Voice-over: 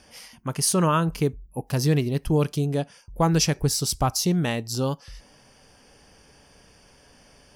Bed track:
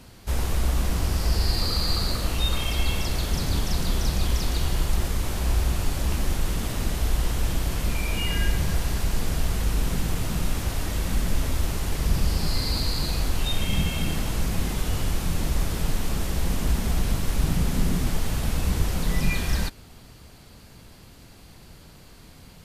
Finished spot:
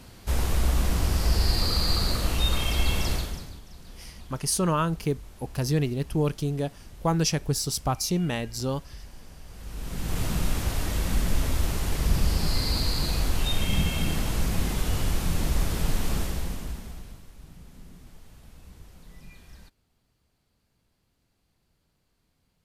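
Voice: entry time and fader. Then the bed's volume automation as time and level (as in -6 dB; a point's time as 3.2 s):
3.85 s, -3.5 dB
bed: 3.13 s 0 dB
3.61 s -21.5 dB
9.45 s -21.5 dB
10.2 s -0.5 dB
16.18 s -0.5 dB
17.33 s -24.5 dB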